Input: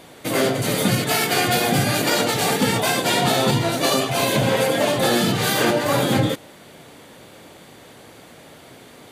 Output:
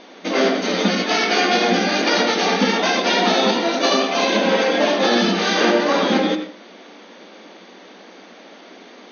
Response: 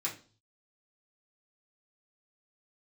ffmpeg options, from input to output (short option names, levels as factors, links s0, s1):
-filter_complex "[0:a]asplit=2[s0][s1];[1:a]atrim=start_sample=2205,lowpass=5100,adelay=80[s2];[s1][s2]afir=irnorm=-1:irlink=0,volume=0.335[s3];[s0][s3]amix=inputs=2:normalize=0,afftfilt=real='re*between(b*sr/4096,180,6500)':imag='im*between(b*sr/4096,180,6500)':win_size=4096:overlap=0.75,volume=1.26"